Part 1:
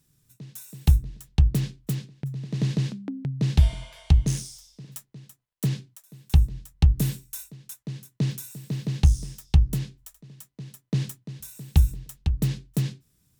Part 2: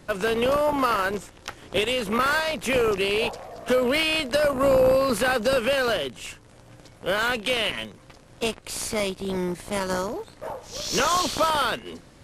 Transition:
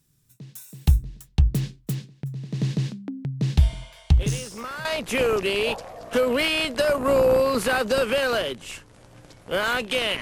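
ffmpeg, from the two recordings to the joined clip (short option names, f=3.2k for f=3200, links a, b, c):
-filter_complex "[1:a]asplit=2[a][b];[0:a]apad=whole_dur=10.21,atrim=end=10.21,atrim=end=4.852[c];[b]atrim=start=2.398:end=7.76[d];[a]atrim=start=1.69:end=2.4,asetpts=PTS-STARTPTS,volume=-12dB,afade=t=in:d=0.004:c=hsin,afade=t=out:st=0.706:d=0.004:c=hsin,adelay=4140[e];[c][d]acrossfade=d=0.004:c1=hsin:c2=hsin[f];[f][e]amix=inputs=2:normalize=0"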